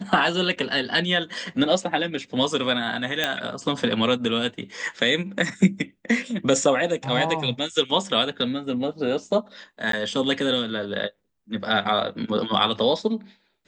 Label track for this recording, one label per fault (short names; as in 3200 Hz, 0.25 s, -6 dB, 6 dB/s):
3.240000	3.240000	pop -7 dBFS
9.920000	9.930000	gap 13 ms